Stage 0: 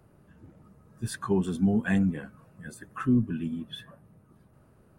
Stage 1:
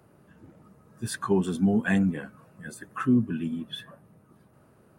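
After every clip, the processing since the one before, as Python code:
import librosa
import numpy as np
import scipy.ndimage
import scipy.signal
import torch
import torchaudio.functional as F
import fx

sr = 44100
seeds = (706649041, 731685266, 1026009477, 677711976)

y = fx.highpass(x, sr, hz=170.0, slope=6)
y = y * 10.0 ** (3.5 / 20.0)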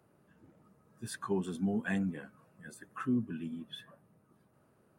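y = fx.low_shelf(x, sr, hz=100.0, db=-5.5)
y = y * 10.0 ** (-8.5 / 20.0)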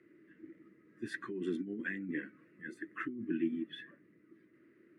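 y = fx.over_compress(x, sr, threshold_db=-37.0, ratio=-1.0)
y = fx.double_bandpass(y, sr, hz=800.0, octaves=2.6)
y = y * 10.0 ** (12.0 / 20.0)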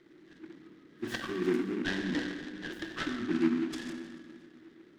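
y = fx.rev_plate(x, sr, seeds[0], rt60_s=2.3, hf_ratio=0.55, predelay_ms=0, drr_db=1.0)
y = fx.noise_mod_delay(y, sr, seeds[1], noise_hz=1500.0, depth_ms=0.066)
y = y * 10.0 ** (3.5 / 20.0)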